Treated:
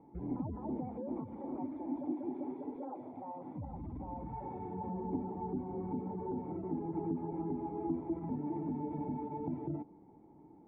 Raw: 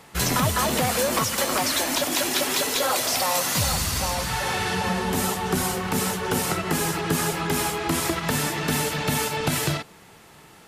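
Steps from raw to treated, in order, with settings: spectral gate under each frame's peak -20 dB strong; peak limiter -22 dBFS, peak gain reduction 10.5 dB; cascade formant filter u; trim +3 dB

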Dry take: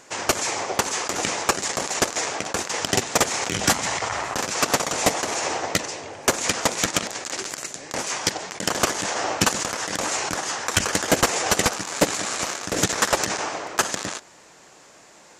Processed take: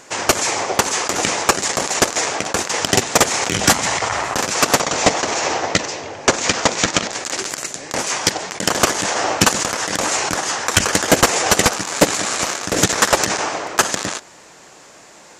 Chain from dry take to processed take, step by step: 4.80–7.13 s: low-pass 7.2 kHz 24 dB/octave; trim +6 dB

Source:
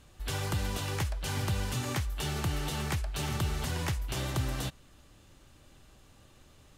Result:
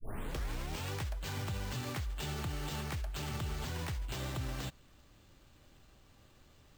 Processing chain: tape start-up on the opening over 0.91 s; sample-rate reducer 11 kHz, jitter 0%; peak limiter -26 dBFS, peak gain reduction 4.5 dB; trim -4 dB

